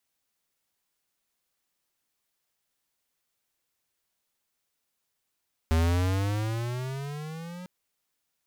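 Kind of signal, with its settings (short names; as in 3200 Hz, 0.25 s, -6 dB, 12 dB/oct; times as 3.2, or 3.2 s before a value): gliding synth tone square, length 1.95 s, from 79.4 Hz, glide +14.5 st, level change -18.5 dB, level -22 dB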